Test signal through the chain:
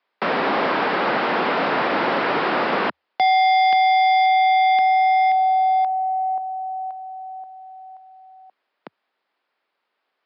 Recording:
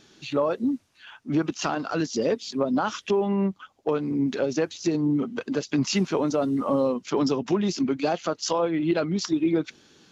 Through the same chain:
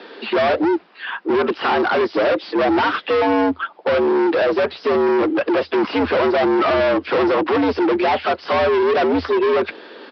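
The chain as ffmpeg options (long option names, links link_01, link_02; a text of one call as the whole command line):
ffmpeg -i in.wav -filter_complex "[0:a]asplit=2[link_01][link_02];[link_02]highpass=frequency=720:poles=1,volume=25dB,asoftclip=type=tanh:threshold=-10.5dB[link_03];[link_01][link_03]amix=inputs=2:normalize=0,lowpass=frequency=1100:poles=1,volume=-6dB,highpass=97,acrossover=split=2600[link_04][link_05];[link_05]asoftclip=type=tanh:threshold=-38dB[link_06];[link_04][link_06]amix=inputs=2:normalize=0,aemphasis=mode=reproduction:type=50fm,aresample=11025,asoftclip=type=hard:threshold=-22dB,aresample=44100,afreqshift=80,volume=7dB" out.wav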